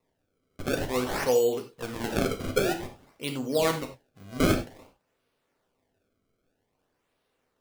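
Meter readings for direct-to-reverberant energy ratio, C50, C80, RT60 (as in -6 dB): 3.5 dB, 9.5 dB, 15.0 dB, no single decay rate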